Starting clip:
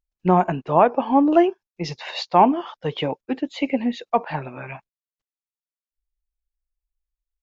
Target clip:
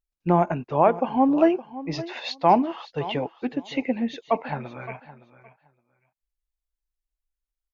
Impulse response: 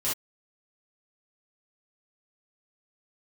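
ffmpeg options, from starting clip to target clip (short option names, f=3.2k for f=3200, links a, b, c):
-af "aecho=1:1:543|1086:0.158|0.0254,asetrate=42336,aresample=44100,volume=-3dB"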